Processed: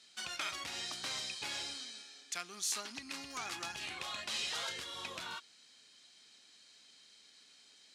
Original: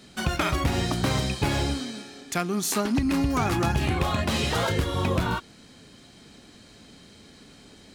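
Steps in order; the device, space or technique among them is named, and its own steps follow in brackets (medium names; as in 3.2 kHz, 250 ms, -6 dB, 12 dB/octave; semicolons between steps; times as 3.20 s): piezo pickup straight into a mixer (low-pass 5.5 kHz 12 dB/octave; differentiator)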